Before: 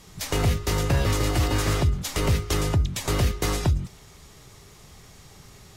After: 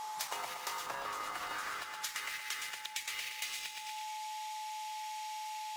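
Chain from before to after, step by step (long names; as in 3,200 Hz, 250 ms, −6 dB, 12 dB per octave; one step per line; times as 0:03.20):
high-pass filter sweep 910 Hz → 2,500 Hz, 0:00.41–0:03.53
in parallel at −7.5 dB: bit reduction 5 bits
0:00.86–0:01.82: on the sum: tilt shelving filter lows +6 dB, about 1,100 Hz
on a send: feedback echo with a high-pass in the loop 118 ms, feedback 40%, high-pass 210 Hz, level −9 dB
on the sum: steady tone 860 Hz −41 dBFS
downward compressor 16 to 1, threshold −38 dBFS, peak gain reduction 19 dB
level +1.5 dB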